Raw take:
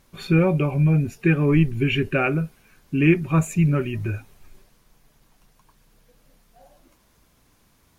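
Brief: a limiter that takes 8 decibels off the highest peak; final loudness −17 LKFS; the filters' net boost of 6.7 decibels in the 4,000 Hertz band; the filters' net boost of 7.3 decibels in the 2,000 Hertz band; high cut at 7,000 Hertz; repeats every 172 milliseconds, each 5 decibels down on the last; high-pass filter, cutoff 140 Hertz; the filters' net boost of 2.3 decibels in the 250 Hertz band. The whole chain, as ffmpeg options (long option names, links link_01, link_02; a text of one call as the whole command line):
ffmpeg -i in.wav -af "highpass=140,lowpass=7000,equalizer=frequency=250:width_type=o:gain=5,equalizer=frequency=2000:width_type=o:gain=7.5,equalizer=frequency=4000:width_type=o:gain=6,alimiter=limit=-9dB:level=0:latency=1,aecho=1:1:172|344|516|688|860|1032|1204:0.562|0.315|0.176|0.0988|0.0553|0.031|0.0173,volume=2.5dB" out.wav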